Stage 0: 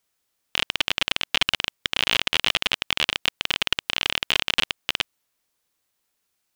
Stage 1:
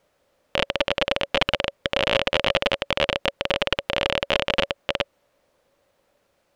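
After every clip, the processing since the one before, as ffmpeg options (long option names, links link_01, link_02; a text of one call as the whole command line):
ffmpeg -i in.wav -af "lowpass=frequency=1100:poles=1,equalizer=frequency=560:width=4.2:gain=14.5,alimiter=level_in=17.5dB:limit=-1dB:release=50:level=0:latency=1,volume=-1.5dB" out.wav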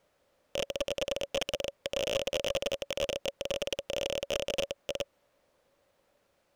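ffmpeg -i in.wav -af "aeval=exprs='clip(val(0),-1,0.0668)':channel_layout=same,volume=-4dB" out.wav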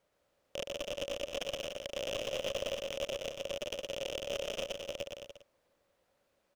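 ffmpeg -i in.wav -af "aecho=1:1:120|216|292.8|354.2|403.4:0.631|0.398|0.251|0.158|0.1,volume=-6.5dB" out.wav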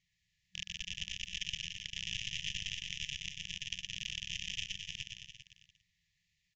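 ffmpeg -i in.wav -af "afftfilt=real='re*(1-between(b*sr/4096,190,1700))':imag='im*(1-between(b*sr/4096,190,1700))':win_size=4096:overlap=0.75,aecho=1:1:396:0.224,volume=2.5dB" -ar 16000 -c:a libvorbis -b:a 96k out.ogg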